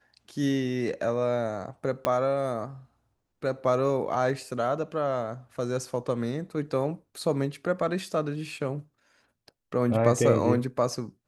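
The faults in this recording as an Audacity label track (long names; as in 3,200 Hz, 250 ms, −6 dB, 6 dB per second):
2.050000	2.050000	click −11 dBFS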